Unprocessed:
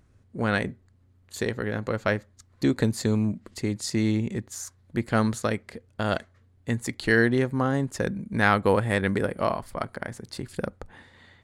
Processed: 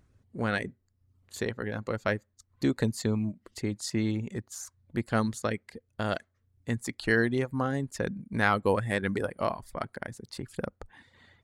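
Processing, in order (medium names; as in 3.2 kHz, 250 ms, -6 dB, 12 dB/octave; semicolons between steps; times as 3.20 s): reverb removal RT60 0.6 s; trim -3.5 dB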